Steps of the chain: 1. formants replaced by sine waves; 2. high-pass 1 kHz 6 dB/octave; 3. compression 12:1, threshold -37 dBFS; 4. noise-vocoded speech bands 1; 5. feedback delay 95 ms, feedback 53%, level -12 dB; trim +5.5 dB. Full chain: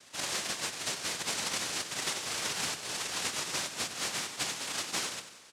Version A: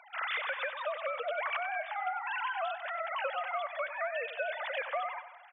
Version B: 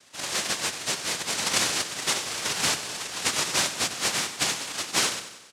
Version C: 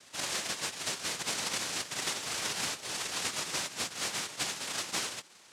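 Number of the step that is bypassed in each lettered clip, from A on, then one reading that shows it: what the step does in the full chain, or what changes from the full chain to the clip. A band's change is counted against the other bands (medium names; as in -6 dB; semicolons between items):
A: 4, 4 kHz band -18.5 dB; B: 3, mean gain reduction 5.5 dB; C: 5, echo-to-direct -10.5 dB to none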